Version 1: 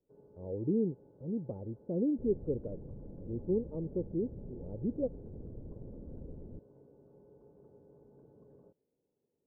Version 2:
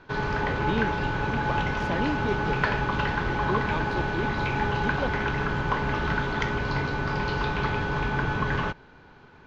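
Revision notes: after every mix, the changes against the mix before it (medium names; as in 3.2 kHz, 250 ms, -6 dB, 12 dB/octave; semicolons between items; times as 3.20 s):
first sound: remove differentiator; master: remove Chebyshev low-pass 520 Hz, order 4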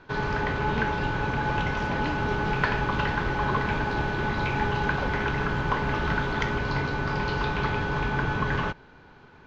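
speech -6.5 dB; second sound +5.5 dB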